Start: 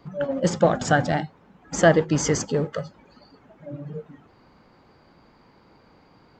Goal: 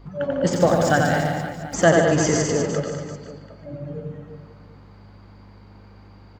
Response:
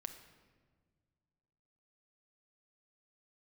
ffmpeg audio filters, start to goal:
-filter_complex "[0:a]asettb=1/sr,asplit=3[s0][s1][s2];[s0]atrim=end=0.534[s3];[s1]atrim=start=0.53:end=1.74,asetpts=PTS-STARTPTS,afade=t=in:d=0.004:c=qsin,afade=t=out:st=1.206:d=0.004:c=qsin,aeval=exprs='val(0)*gte(abs(val(0)),0.0141)':c=same[s4];[s2]atrim=start=1.736[s5];[s3][s4]acrossfade=d=0.004:c1=hsin:c2=qsin[s6];[s6][s5]acrossfade=d=0.004:c1=qsin:c2=hsin,aeval=exprs='val(0)+0.00562*(sin(2*PI*50*n/s)+sin(2*PI*2*50*n/s)/2+sin(2*PI*3*50*n/s)/3+sin(2*PI*4*50*n/s)/4+sin(2*PI*5*50*n/s)/5)':c=same,aecho=1:1:90|202.5|343.1|518.9|738.6:0.631|0.398|0.251|0.158|0.1,asplit=2[s7][s8];[1:a]atrim=start_sample=2205,adelay=149[s9];[s8][s9]afir=irnorm=-1:irlink=0,volume=0.562[s10];[s7][s10]amix=inputs=2:normalize=0"

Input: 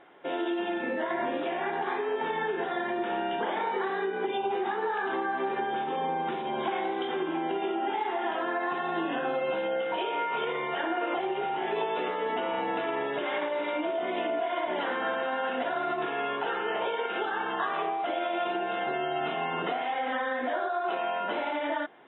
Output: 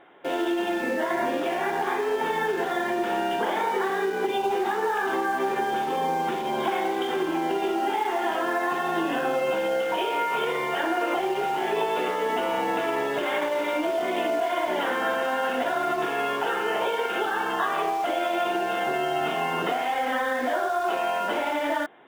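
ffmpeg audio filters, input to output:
-filter_complex "[0:a]asplit=2[s0][s1];[s1]acrusher=bits=5:mix=0:aa=0.000001,volume=0.316[s2];[s0][s2]amix=inputs=2:normalize=0,volume=1.26"

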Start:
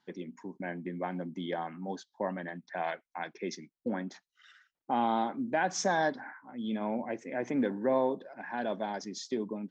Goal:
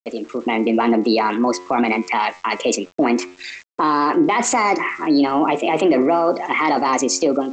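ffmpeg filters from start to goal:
-filter_complex "[0:a]dynaudnorm=f=410:g=3:m=4.22,asetrate=56889,aresample=44100,asplit=2[s0][s1];[s1]acompressor=threshold=0.0224:ratio=6,volume=0.891[s2];[s0][s2]amix=inputs=2:normalize=0,alimiter=limit=0.15:level=0:latency=1:release=16,bandreject=f=90.17:t=h:w=4,bandreject=f=180.34:t=h:w=4,bandreject=f=270.51:t=h:w=4,bandreject=f=360.68:t=h:w=4,bandreject=f=450.85:t=h:w=4,bandreject=f=541.02:t=h:w=4,bandreject=f=631.19:t=h:w=4,bandreject=f=721.36:t=h:w=4,bandreject=f=811.53:t=h:w=4,bandreject=f=901.7:t=h:w=4,bandreject=f=991.87:t=h:w=4,bandreject=f=1082.04:t=h:w=4,bandreject=f=1172.21:t=h:w=4,bandreject=f=1262.38:t=h:w=4,bandreject=f=1352.55:t=h:w=4,bandreject=f=1442.72:t=h:w=4,bandreject=f=1532.89:t=h:w=4,bandreject=f=1623.06:t=h:w=4,bandreject=f=1713.23:t=h:w=4,bandreject=f=1803.4:t=h:w=4,bandreject=f=1893.57:t=h:w=4,bandreject=f=1983.74:t=h:w=4,bandreject=f=2073.91:t=h:w=4,bandreject=f=2164.08:t=h:w=4,bandreject=f=2254.25:t=h:w=4,bandreject=f=2344.42:t=h:w=4,bandreject=f=2434.59:t=h:w=4,bandreject=f=2524.76:t=h:w=4,bandreject=f=2614.93:t=h:w=4,aresample=16000,aeval=exprs='val(0)*gte(abs(val(0)),0.00316)':c=same,aresample=44100,volume=2.66"

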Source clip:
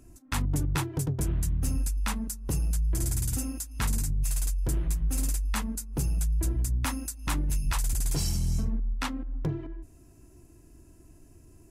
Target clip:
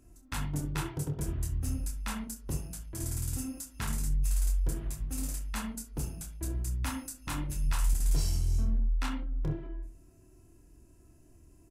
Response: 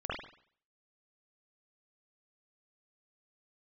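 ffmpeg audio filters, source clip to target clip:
-filter_complex "[0:a]aecho=1:1:27|65:0.531|0.158,asplit=2[s0][s1];[1:a]atrim=start_sample=2205,afade=t=out:st=0.19:d=0.01,atrim=end_sample=8820[s2];[s1][s2]afir=irnorm=-1:irlink=0,volume=0.316[s3];[s0][s3]amix=inputs=2:normalize=0,volume=0.398"

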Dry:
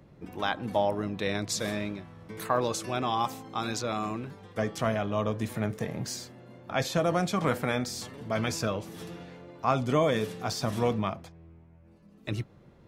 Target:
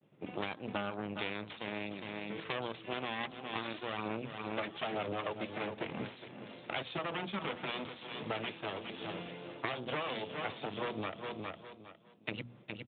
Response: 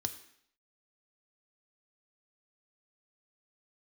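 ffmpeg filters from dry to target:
-filter_complex "[0:a]adynamicequalizer=threshold=0.00447:dfrequency=2000:dqfactor=2.5:tfrequency=2000:tqfactor=2.5:attack=5:release=100:ratio=0.375:range=2.5:mode=cutabove:tftype=bell,asettb=1/sr,asplit=3[s0][s1][s2];[s0]atrim=end=3.234[s3];[s1]atrim=start=3.23:end=5.79,asetpts=PTS-STARTPTS,afade=t=in:d=0.004:c=qsin,afade=t=out:st=2.556:d=0.004:c=qsin,aphaser=in_gain=1:out_gain=1:delay=3.5:decay=0.55:speed=1.1:type=sinusoidal[s4];[s2]atrim=start=5.786[s5];[s3][s4]acrossfade=d=0.004:c1=hsin:c2=qsin[s6];[s6][s5]acrossfade=d=0.004:c1=qsin:c2=hsin,aeval=exprs='0.355*(cos(1*acos(clip(val(0)/0.355,-1,1)))-cos(1*PI/2))+0.0282*(cos(3*acos(clip(val(0)/0.355,-1,1)))-cos(3*PI/2))+0.0447*(cos(5*acos(clip(val(0)/0.355,-1,1)))-cos(5*PI/2))+0.158*(cos(8*acos(clip(val(0)/0.355,-1,1)))-cos(8*PI/2))':c=same,agate=range=0.0224:threshold=0.00631:ratio=3:detection=peak,bandreject=f=60:t=h:w=6,bandreject=f=120:t=h:w=6,bandreject=f=180:t=h:w=6,bandreject=f=240:t=h:w=6,aecho=1:1:410|820|1230:0.211|0.0507|0.0122,aexciter=amount=1.5:drive=8.7:freq=2400,highpass=140,acompressor=threshold=0.0282:ratio=8,volume=0.708" -ar 8000 -c:a libspeex -b:a 24k

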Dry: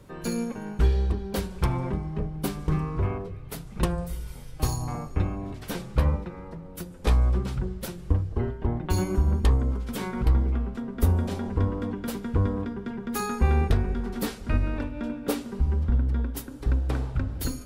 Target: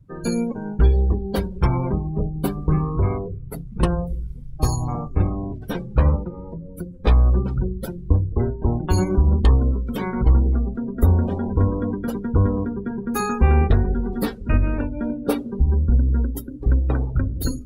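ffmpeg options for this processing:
-af "acontrast=64,afftdn=nr=28:nf=-31"

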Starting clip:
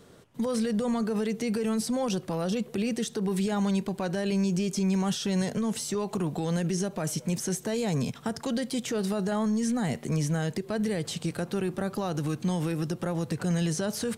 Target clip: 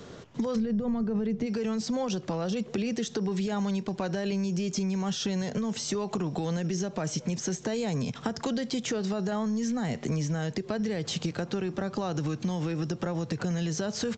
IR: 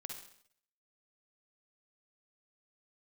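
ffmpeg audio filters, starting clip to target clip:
-filter_complex "[0:a]acrossover=split=180[s0][s1];[s0]acrusher=samples=8:mix=1:aa=0.000001[s2];[s2][s1]amix=inputs=2:normalize=0,asplit=3[s3][s4][s5];[s3]afade=t=out:st=0.55:d=0.02[s6];[s4]aemphasis=mode=reproduction:type=riaa,afade=t=in:st=0.55:d=0.02,afade=t=out:st=1.45:d=0.02[s7];[s5]afade=t=in:st=1.45:d=0.02[s8];[s6][s7][s8]amix=inputs=3:normalize=0,acompressor=threshold=0.0158:ratio=6,aresample=16000,aresample=44100,volume=2.66"

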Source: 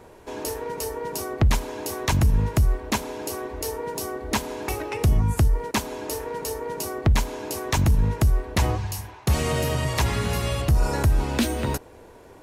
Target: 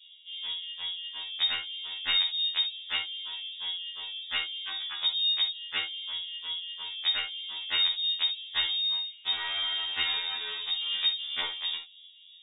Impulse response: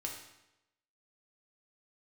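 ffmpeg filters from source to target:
-filter_complex "[0:a]lowshelf=f=400:g=-3.5,acrossover=split=240|3000[s0][s1][s2];[s0]acompressor=threshold=0.0891:ratio=8[s3];[s3][s1][s2]amix=inputs=3:normalize=0,acrossover=split=1100[s4][s5];[s5]acrusher=bits=4:mix=0:aa=0.5[s6];[s4][s6]amix=inputs=2:normalize=0,lowpass=f=3200:t=q:w=0.5098,lowpass=f=3200:t=q:w=0.6013,lowpass=f=3200:t=q:w=0.9,lowpass=f=3200:t=q:w=2.563,afreqshift=-3800[s7];[1:a]atrim=start_sample=2205,atrim=end_sample=3528[s8];[s7][s8]afir=irnorm=-1:irlink=0,afftfilt=real='re*2*eq(mod(b,4),0)':imag='im*2*eq(mod(b,4),0)':win_size=2048:overlap=0.75"

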